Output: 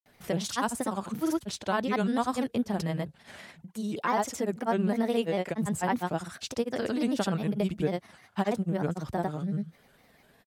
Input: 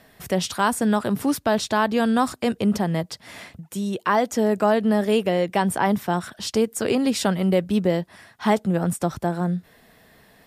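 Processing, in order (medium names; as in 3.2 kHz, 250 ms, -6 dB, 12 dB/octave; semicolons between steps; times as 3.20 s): granulator, pitch spread up and down by 3 st; trim -6 dB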